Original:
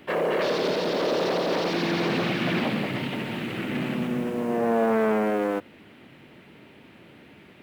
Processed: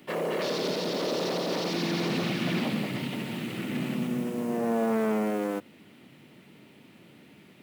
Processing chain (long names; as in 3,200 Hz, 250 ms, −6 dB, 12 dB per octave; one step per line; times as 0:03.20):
high-pass filter 160 Hz 12 dB per octave
bass and treble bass +9 dB, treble +10 dB
notch filter 1,600 Hz, Q 19
level −6 dB